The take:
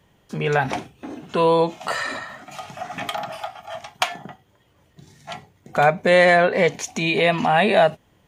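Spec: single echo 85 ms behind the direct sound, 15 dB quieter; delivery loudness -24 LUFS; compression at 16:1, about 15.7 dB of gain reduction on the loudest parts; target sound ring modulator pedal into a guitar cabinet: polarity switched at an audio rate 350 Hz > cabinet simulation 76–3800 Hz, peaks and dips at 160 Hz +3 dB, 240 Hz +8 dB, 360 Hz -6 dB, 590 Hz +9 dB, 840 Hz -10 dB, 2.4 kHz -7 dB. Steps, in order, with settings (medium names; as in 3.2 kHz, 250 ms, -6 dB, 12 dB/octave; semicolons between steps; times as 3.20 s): compression 16:1, threshold -26 dBFS; delay 85 ms -15 dB; polarity switched at an audio rate 350 Hz; cabinet simulation 76–3800 Hz, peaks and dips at 160 Hz +3 dB, 240 Hz +8 dB, 360 Hz -6 dB, 590 Hz +9 dB, 840 Hz -10 dB, 2.4 kHz -7 dB; trim +8.5 dB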